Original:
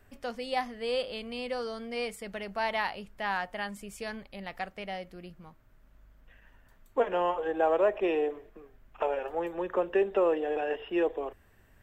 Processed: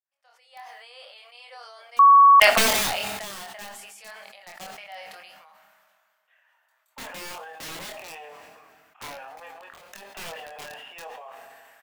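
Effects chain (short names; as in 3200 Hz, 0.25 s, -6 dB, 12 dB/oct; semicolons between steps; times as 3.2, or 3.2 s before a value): opening faded in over 2.00 s; steep high-pass 660 Hz 36 dB/oct; wrapped overs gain 29 dB; reverb RT60 1.9 s, pre-delay 4 ms, DRR 19 dB; 9.17–10.08 negative-ratio compressor -41 dBFS, ratio -0.5; flange 0.68 Hz, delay 1.3 ms, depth 7.9 ms, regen +86%; doubler 25 ms -4.5 dB; 1.99–2.4 bleep 1120 Hz -9 dBFS; sustainer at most 27 dB/s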